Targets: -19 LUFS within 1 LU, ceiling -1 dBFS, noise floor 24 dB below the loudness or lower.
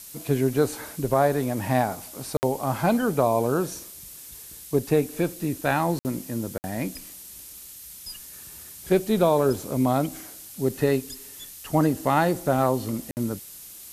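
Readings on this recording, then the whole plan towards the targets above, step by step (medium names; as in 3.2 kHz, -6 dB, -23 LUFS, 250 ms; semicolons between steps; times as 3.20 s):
dropouts 4; longest dropout 59 ms; noise floor -43 dBFS; noise floor target -49 dBFS; loudness -25.0 LUFS; peak level -8.0 dBFS; loudness target -19.0 LUFS
-> interpolate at 2.37/5.99/6.58/13.11 s, 59 ms; noise print and reduce 6 dB; trim +6 dB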